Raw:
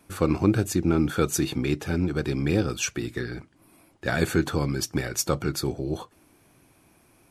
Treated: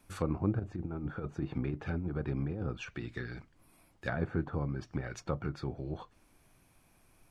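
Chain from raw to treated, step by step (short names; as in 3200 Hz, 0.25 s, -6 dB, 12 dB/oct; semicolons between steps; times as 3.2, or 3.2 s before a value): treble ducked by the level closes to 1000 Hz, closed at -21.5 dBFS; bell 350 Hz -6 dB 1.1 oct; 0.59–2.78 negative-ratio compressor -27 dBFS, ratio -0.5; added noise brown -61 dBFS; gain -6.5 dB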